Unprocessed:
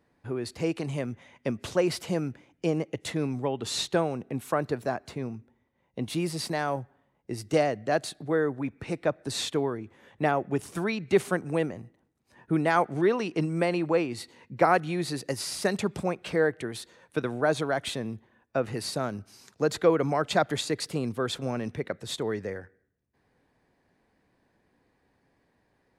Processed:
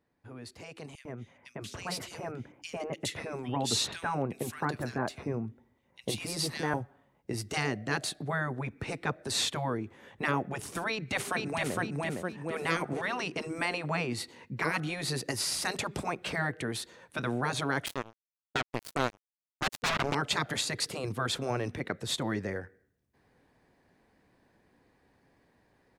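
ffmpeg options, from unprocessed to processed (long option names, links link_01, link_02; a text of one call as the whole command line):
ffmpeg -i in.wav -filter_complex "[0:a]asettb=1/sr,asplit=3[link_01][link_02][link_03];[link_01]atrim=end=0.954[link_04];[link_02]atrim=start=0.95:end=6.74,asetpts=PTS-STARTPTS,afade=type=in:duration=0.004:curve=qsin,afade=type=out:start_time=5.786:duration=0.004:curve=qsin,acrossover=split=2100[link_05][link_06];[link_05]adelay=100[link_07];[link_07][link_06]amix=inputs=2:normalize=0,atrim=end_sample=255339[link_08];[link_03]atrim=start=6.736[link_09];[link_04][link_08]acrossfade=duration=0.004:curve1=hsin:curve2=qsin[link_10];[link_10][link_09]acrossfade=duration=0.004:curve1=qsin:curve2=hsin,asplit=2[link_11][link_12];[link_12]afade=type=in:start_time=10.9:duration=0.01,afade=type=out:start_time=11.76:duration=0.01,aecho=0:1:460|920|1380|1840|2300:0.707946|0.283178|0.113271|0.0453085|0.0181234[link_13];[link_11][link_13]amix=inputs=2:normalize=0,asettb=1/sr,asplit=3[link_14][link_15][link_16];[link_14]atrim=end=17.864[link_17];[link_15]atrim=start=17.86:end=20.15,asetpts=PTS-STARTPTS,afade=type=in:duration=0.004:curve=qsin,afade=type=out:start_time=2.286:duration=0.004:curve=qsin,acrusher=bits=3:mix=0:aa=0.5[link_18];[link_16]atrim=start=20.146[link_19];[link_17][link_18]acrossfade=duration=0.004:curve1=hsin:curve2=qsin[link_20];[link_20][link_19]acrossfade=duration=0.004:curve1=qsin:curve2=hsin,afftfilt=real='re*lt(hypot(re,im),0.2)':imag='im*lt(hypot(re,im),0.2)':win_size=1024:overlap=0.75,dynaudnorm=framelen=800:gausssize=5:maxgain=11dB,volume=-8.5dB" out.wav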